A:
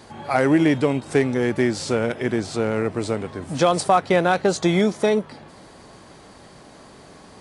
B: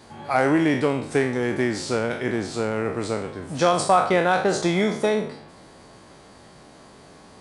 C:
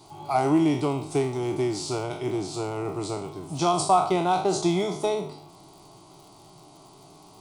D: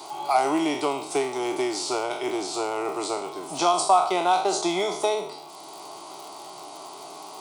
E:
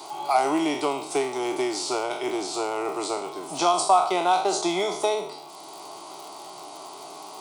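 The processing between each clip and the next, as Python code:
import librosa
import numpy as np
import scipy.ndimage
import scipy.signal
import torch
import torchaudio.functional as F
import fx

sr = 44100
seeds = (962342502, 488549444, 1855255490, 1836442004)

y1 = fx.spec_trails(x, sr, decay_s=0.55)
y1 = fx.dynamic_eq(y1, sr, hz=1100.0, q=0.81, threshold_db=-30.0, ratio=4.0, max_db=3)
y1 = F.gain(torch.from_numpy(y1), -4.0).numpy()
y2 = fx.dmg_crackle(y1, sr, seeds[0], per_s=88.0, level_db=-41.0)
y2 = fx.fixed_phaser(y2, sr, hz=340.0, stages=8)
y3 = scipy.signal.sosfilt(scipy.signal.butter(2, 510.0, 'highpass', fs=sr, output='sos'), y2)
y3 = fx.band_squash(y3, sr, depth_pct=40)
y3 = F.gain(torch.from_numpy(y3), 5.0).numpy()
y4 = scipy.signal.sosfilt(scipy.signal.butter(2, 90.0, 'highpass', fs=sr, output='sos'), y3)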